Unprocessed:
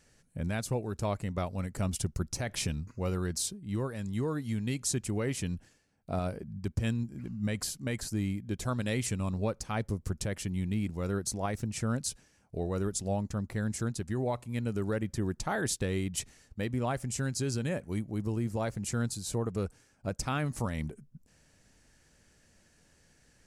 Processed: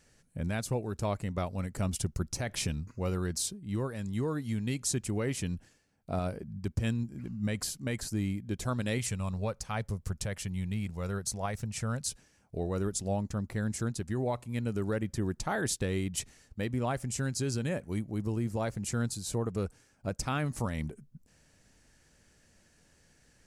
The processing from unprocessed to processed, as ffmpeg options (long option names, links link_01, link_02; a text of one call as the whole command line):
ffmpeg -i in.wav -filter_complex "[0:a]asettb=1/sr,asplit=3[link_01][link_02][link_03];[link_01]atrim=end=8.984[link_04];[link_02]atrim=start=8.98:end=12.07,asetpts=PTS-STARTPTS,afade=type=in:duration=0.004:curve=qsin,afade=type=out:start_time=3.086:duration=0.004:curve=qsin,equalizer=frequency=300:width_type=o:width=0.77:gain=-10.5[link_05];[link_03]atrim=start=12.066[link_06];[link_04][link_05]acrossfade=duration=0.004:curve1=hsin:curve2=qsin[link_07];[link_07][link_06]acrossfade=duration=0.004:curve1=qsin:curve2=hsin" out.wav